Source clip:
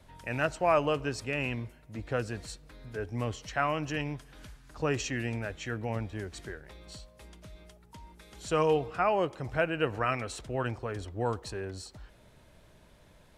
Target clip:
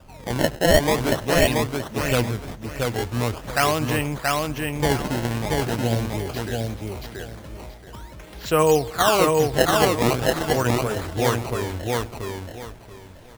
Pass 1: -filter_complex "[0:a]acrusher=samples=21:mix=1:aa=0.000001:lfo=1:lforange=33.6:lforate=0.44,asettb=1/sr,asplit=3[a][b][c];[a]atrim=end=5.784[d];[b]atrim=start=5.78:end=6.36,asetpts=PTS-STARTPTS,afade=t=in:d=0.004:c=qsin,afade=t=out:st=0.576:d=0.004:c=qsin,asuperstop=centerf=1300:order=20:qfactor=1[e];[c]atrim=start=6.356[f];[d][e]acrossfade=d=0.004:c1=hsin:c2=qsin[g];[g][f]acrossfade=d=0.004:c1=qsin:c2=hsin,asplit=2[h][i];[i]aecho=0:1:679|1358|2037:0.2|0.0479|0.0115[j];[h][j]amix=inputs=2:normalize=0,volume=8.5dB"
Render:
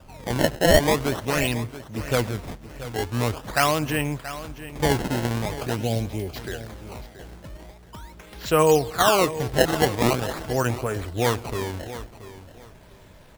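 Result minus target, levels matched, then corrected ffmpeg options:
echo-to-direct -11.5 dB
-filter_complex "[0:a]acrusher=samples=21:mix=1:aa=0.000001:lfo=1:lforange=33.6:lforate=0.44,asettb=1/sr,asplit=3[a][b][c];[a]atrim=end=5.784[d];[b]atrim=start=5.78:end=6.36,asetpts=PTS-STARTPTS,afade=t=in:d=0.004:c=qsin,afade=t=out:st=0.576:d=0.004:c=qsin,asuperstop=centerf=1300:order=20:qfactor=1[e];[c]atrim=start=6.356[f];[d][e]acrossfade=d=0.004:c1=hsin:c2=qsin[g];[g][f]acrossfade=d=0.004:c1=qsin:c2=hsin,asplit=2[h][i];[i]aecho=0:1:679|1358|2037|2716:0.75|0.18|0.0432|0.0104[j];[h][j]amix=inputs=2:normalize=0,volume=8.5dB"

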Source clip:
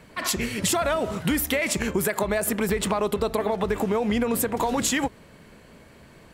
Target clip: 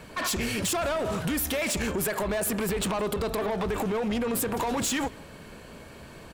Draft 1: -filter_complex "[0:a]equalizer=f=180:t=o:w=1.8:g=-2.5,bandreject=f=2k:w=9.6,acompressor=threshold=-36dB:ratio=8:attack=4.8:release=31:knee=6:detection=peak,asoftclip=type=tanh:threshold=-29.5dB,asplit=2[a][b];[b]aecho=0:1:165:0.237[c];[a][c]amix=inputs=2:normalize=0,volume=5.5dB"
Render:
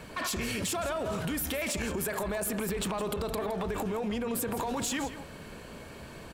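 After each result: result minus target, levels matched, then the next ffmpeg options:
compressor: peak gain reduction +8.5 dB; echo-to-direct +11 dB
-filter_complex "[0:a]equalizer=f=180:t=o:w=1.8:g=-2.5,bandreject=f=2k:w=9.6,acompressor=threshold=-26.5dB:ratio=8:attack=4.8:release=31:knee=6:detection=peak,asoftclip=type=tanh:threshold=-29.5dB,asplit=2[a][b];[b]aecho=0:1:165:0.237[c];[a][c]amix=inputs=2:normalize=0,volume=5.5dB"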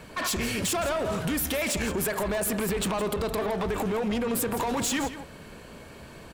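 echo-to-direct +11 dB
-filter_complex "[0:a]equalizer=f=180:t=o:w=1.8:g=-2.5,bandreject=f=2k:w=9.6,acompressor=threshold=-26.5dB:ratio=8:attack=4.8:release=31:knee=6:detection=peak,asoftclip=type=tanh:threshold=-29.5dB,asplit=2[a][b];[b]aecho=0:1:165:0.0668[c];[a][c]amix=inputs=2:normalize=0,volume=5.5dB"

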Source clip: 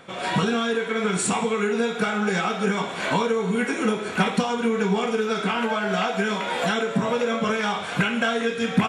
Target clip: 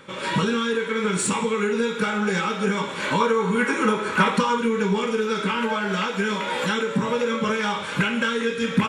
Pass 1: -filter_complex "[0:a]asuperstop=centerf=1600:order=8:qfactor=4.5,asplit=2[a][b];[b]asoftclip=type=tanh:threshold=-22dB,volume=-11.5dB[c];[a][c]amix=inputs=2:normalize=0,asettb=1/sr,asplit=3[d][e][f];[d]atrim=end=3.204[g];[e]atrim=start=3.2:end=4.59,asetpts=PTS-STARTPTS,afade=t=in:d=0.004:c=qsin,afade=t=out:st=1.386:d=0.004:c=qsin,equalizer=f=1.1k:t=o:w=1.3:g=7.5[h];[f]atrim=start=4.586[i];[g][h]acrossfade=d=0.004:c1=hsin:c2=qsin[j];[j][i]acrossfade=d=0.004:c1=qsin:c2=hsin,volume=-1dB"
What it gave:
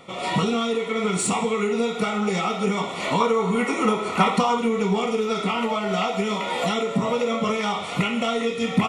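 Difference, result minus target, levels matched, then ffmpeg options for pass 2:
2000 Hz band -4.5 dB
-filter_complex "[0:a]asuperstop=centerf=710:order=8:qfactor=4.5,asplit=2[a][b];[b]asoftclip=type=tanh:threshold=-22dB,volume=-11.5dB[c];[a][c]amix=inputs=2:normalize=0,asettb=1/sr,asplit=3[d][e][f];[d]atrim=end=3.204[g];[e]atrim=start=3.2:end=4.59,asetpts=PTS-STARTPTS,afade=t=in:d=0.004:c=qsin,afade=t=out:st=1.386:d=0.004:c=qsin,equalizer=f=1.1k:t=o:w=1.3:g=7.5[h];[f]atrim=start=4.586[i];[g][h]acrossfade=d=0.004:c1=hsin:c2=qsin[j];[j][i]acrossfade=d=0.004:c1=qsin:c2=hsin,volume=-1dB"

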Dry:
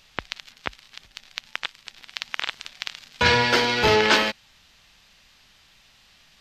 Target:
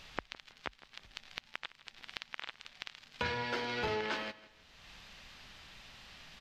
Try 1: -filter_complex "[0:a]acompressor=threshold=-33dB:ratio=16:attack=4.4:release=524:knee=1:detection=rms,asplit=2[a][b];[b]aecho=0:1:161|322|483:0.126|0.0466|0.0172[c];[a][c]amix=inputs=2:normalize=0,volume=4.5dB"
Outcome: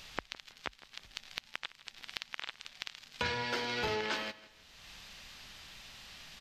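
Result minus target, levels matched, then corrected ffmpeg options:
8000 Hz band +6.0 dB
-filter_complex "[0:a]acompressor=threshold=-33dB:ratio=16:attack=4.4:release=524:knee=1:detection=rms,highshelf=f=5k:g=-10.5,asplit=2[a][b];[b]aecho=0:1:161|322|483:0.126|0.0466|0.0172[c];[a][c]amix=inputs=2:normalize=0,volume=4.5dB"

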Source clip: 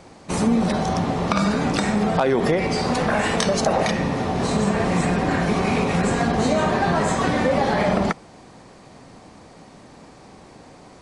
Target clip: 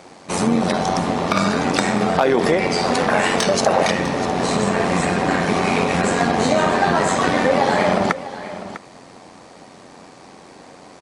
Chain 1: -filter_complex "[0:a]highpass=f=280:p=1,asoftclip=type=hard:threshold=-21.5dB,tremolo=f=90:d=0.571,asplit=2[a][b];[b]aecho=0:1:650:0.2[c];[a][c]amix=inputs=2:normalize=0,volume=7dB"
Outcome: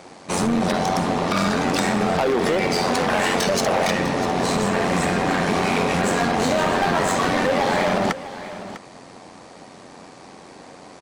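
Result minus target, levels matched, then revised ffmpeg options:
hard clip: distortion +21 dB
-filter_complex "[0:a]highpass=f=280:p=1,asoftclip=type=hard:threshold=-11.5dB,tremolo=f=90:d=0.571,asplit=2[a][b];[b]aecho=0:1:650:0.2[c];[a][c]amix=inputs=2:normalize=0,volume=7dB"

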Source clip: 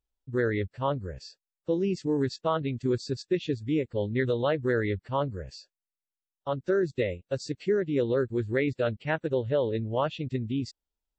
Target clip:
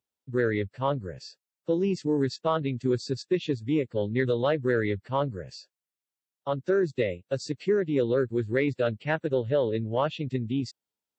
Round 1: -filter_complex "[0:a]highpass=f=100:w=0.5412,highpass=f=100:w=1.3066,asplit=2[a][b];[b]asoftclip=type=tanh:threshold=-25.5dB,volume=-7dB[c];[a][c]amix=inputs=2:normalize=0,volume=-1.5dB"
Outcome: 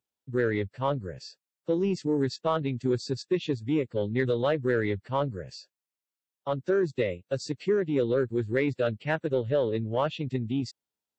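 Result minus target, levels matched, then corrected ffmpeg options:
soft clip: distortion +9 dB
-filter_complex "[0:a]highpass=f=100:w=0.5412,highpass=f=100:w=1.3066,asplit=2[a][b];[b]asoftclip=type=tanh:threshold=-18dB,volume=-7dB[c];[a][c]amix=inputs=2:normalize=0,volume=-1.5dB"

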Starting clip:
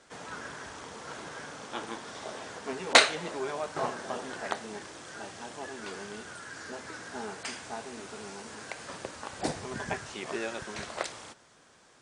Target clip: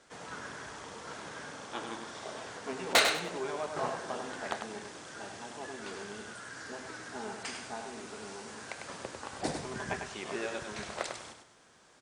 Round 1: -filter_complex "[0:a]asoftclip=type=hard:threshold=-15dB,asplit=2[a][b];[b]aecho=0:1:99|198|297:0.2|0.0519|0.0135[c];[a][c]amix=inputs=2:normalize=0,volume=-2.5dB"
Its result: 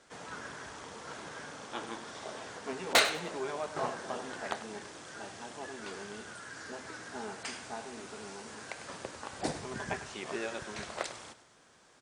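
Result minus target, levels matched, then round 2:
echo-to-direct -7.5 dB
-filter_complex "[0:a]asoftclip=type=hard:threshold=-15dB,asplit=2[a][b];[b]aecho=0:1:99|198|297:0.473|0.123|0.032[c];[a][c]amix=inputs=2:normalize=0,volume=-2.5dB"

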